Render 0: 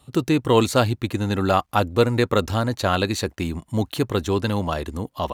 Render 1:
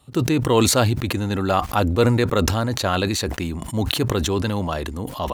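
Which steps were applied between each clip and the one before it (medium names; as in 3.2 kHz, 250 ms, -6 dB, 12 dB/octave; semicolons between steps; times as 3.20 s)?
decay stretcher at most 31 dB/s; trim -1 dB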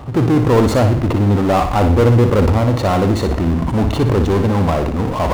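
Savitzky-Golay filter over 65 samples; power-law waveshaper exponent 0.5; flutter echo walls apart 10.2 m, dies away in 0.49 s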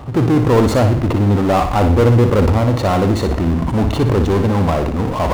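no audible change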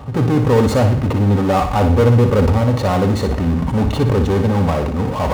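comb of notches 340 Hz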